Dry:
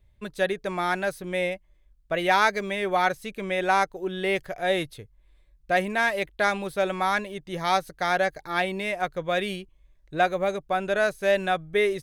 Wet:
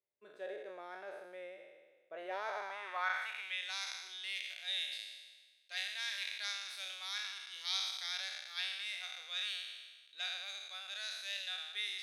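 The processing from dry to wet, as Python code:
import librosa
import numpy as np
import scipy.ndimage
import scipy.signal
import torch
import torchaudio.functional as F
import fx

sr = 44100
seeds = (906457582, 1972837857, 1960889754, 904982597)

y = fx.spec_trails(x, sr, decay_s=1.4)
y = np.diff(y, prepend=0.0)
y = fx.filter_sweep_bandpass(y, sr, from_hz=430.0, to_hz=4100.0, start_s=2.35, end_s=3.74, q=1.9)
y = fx.high_shelf(y, sr, hz=6600.0, db=-8.5)
y = y * 10.0 ** (4.0 / 20.0)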